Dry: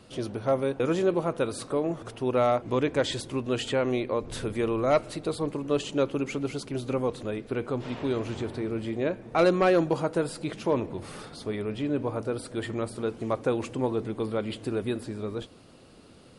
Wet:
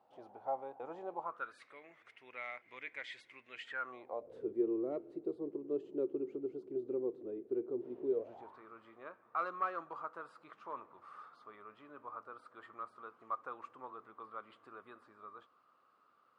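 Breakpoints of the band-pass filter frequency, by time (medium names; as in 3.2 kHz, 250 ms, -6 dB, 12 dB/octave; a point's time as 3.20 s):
band-pass filter, Q 8.4
1.17 s 810 Hz
1.63 s 2.1 kHz
3.61 s 2.1 kHz
4.48 s 370 Hz
8.06 s 370 Hz
8.59 s 1.2 kHz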